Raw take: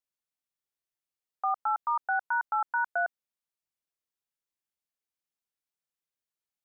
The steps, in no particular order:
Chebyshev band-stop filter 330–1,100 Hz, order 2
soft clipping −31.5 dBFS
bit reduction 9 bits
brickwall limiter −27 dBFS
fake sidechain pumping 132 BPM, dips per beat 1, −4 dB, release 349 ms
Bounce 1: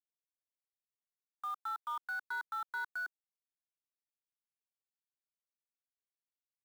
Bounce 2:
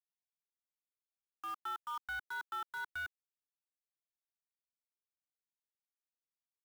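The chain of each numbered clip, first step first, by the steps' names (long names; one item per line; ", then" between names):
fake sidechain pumping, then brickwall limiter, then bit reduction, then Chebyshev band-stop filter, then soft clipping
brickwall limiter, then soft clipping, then fake sidechain pumping, then bit reduction, then Chebyshev band-stop filter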